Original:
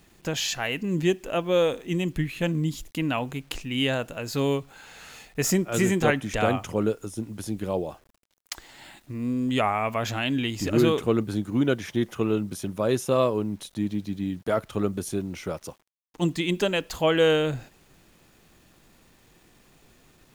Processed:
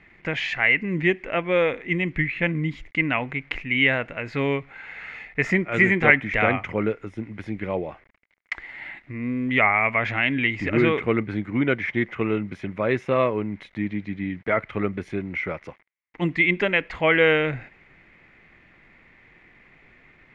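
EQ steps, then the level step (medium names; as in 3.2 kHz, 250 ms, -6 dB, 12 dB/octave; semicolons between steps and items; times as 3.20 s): resonant low-pass 2.1 kHz, resonance Q 8.6; 0.0 dB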